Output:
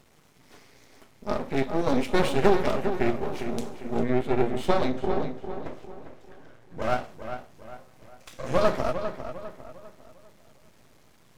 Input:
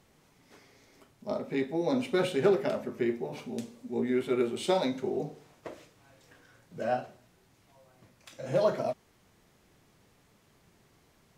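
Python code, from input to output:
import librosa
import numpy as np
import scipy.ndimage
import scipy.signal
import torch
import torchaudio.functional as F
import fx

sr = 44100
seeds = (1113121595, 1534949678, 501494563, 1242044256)

y = np.maximum(x, 0.0)
y = fx.high_shelf(y, sr, hz=3100.0, db=-10.5, at=(4.03, 6.82))
y = fx.echo_filtered(y, sr, ms=401, feedback_pct=40, hz=3800.0, wet_db=-9)
y = y * librosa.db_to_amplitude(8.0)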